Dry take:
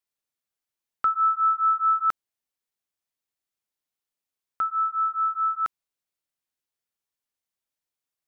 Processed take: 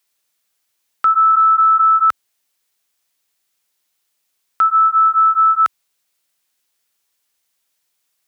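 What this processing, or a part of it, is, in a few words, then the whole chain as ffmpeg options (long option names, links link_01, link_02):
mastering chain: -filter_complex "[0:a]asplit=3[link_01][link_02][link_03];[link_01]afade=type=out:start_time=1.33:duration=0.02[link_04];[link_02]equalizer=frequency=900:width_type=o:width=2.5:gain=11.5,afade=type=in:start_time=1.33:duration=0.02,afade=type=out:start_time=1.8:duration=0.02[link_05];[link_03]afade=type=in:start_time=1.8:duration=0.02[link_06];[link_04][link_05][link_06]amix=inputs=3:normalize=0,highpass=60,equalizer=frequency=520:width_type=o:width=2.2:gain=2,acompressor=threshold=-16dB:ratio=6,tiltshelf=frequency=1200:gain=-5,alimiter=level_in=21dB:limit=-1dB:release=50:level=0:latency=1,volume=-7dB"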